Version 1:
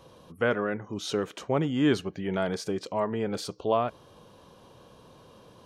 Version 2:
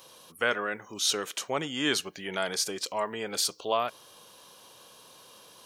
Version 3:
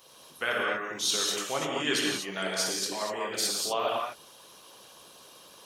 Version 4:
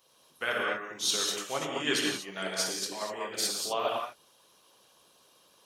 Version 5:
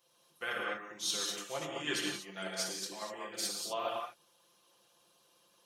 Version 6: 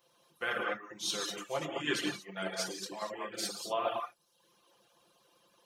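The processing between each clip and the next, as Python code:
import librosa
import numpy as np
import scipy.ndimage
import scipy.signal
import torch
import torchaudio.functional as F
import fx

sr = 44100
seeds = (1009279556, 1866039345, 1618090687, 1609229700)

y1 = fx.tilt_eq(x, sr, slope=4.5)
y2 = fx.rev_gated(y1, sr, seeds[0], gate_ms=270, shape='flat', drr_db=-4.5)
y2 = fx.hpss(y2, sr, part='percussive', gain_db=8)
y2 = F.gain(torch.from_numpy(y2), -9.0).numpy()
y3 = fx.upward_expand(y2, sr, threshold_db=-46.0, expansion=1.5)
y4 = y3 + 0.65 * np.pad(y3, (int(5.8 * sr / 1000.0), 0))[:len(y3)]
y4 = F.gain(torch.from_numpy(y4), -7.5).numpy()
y5 = fx.dereverb_blind(y4, sr, rt60_s=0.65)
y5 = fx.peak_eq(y5, sr, hz=11000.0, db=-7.0, octaves=2.7)
y5 = F.gain(torch.from_numpy(y5), 5.0).numpy()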